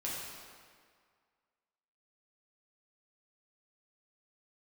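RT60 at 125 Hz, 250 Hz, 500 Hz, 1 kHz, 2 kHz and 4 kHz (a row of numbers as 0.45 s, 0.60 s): 1.6 s, 1.8 s, 1.9 s, 2.0 s, 1.8 s, 1.5 s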